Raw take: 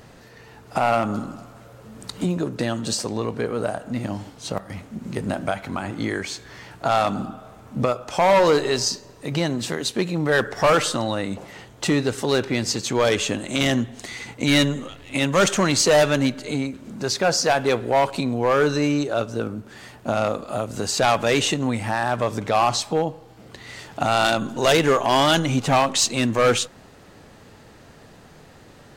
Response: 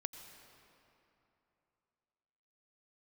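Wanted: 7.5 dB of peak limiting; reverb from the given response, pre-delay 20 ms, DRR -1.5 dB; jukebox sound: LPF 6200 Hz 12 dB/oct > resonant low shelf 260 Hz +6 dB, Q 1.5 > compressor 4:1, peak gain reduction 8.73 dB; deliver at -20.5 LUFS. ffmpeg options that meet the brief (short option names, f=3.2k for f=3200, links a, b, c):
-filter_complex "[0:a]alimiter=limit=-14dB:level=0:latency=1,asplit=2[a][b];[1:a]atrim=start_sample=2205,adelay=20[c];[b][c]afir=irnorm=-1:irlink=0,volume=3.5dB[d];[a][d]amix=inputs=2:normalize=0,lowpass=6.2k,lowshelf=f=260:t=q:w=1.5:g=6,acompressor=threshold=-19dB:ratio=4,volume=3dB"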